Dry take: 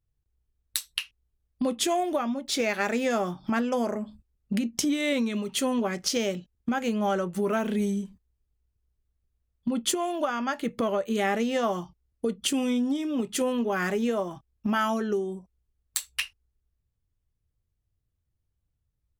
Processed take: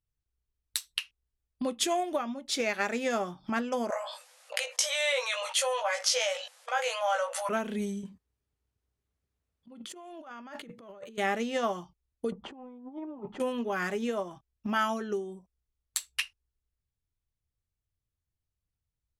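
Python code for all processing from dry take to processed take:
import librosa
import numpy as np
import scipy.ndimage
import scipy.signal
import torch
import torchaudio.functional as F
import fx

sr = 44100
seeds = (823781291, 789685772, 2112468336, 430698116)

y = fx.chain(x, sr, fx.brickwall_bandpass(low_hz=480.0, high_hz=12000.0),
    fx.doubler(ms=18.0, db=-4.0),
    fx.env_flatten(amount_pct=70), at=(3.9, 7.49))
y = fx.chain(y, sr, fx.highpass(hz=100.0, slope=12),
    fx.high_shelf(hz=2700.0, db=-6.0),
    fx.over_compress(threshold_db=-39.0, ratio=-1.0), at=(8.03, 11.18))
y = fx.chain(y, sr, fx.lowpass_res(hz=890.0, q=4.9),
    fx.over_compress(threshold_db=-32.0, ratio=-0.5), at=(12.32, 13.4))
y = scipy.signal.sosfilt(scipy.signal.butter(2, 12000.0, 'lowpass', fs=sr, output='sos'), y)
y = fx.low_shelf(y, sr, hz=480.0, db=-4.5)
y = fx.upward_expand(y, sr, threshold_db=-33.0, expansion=1.5)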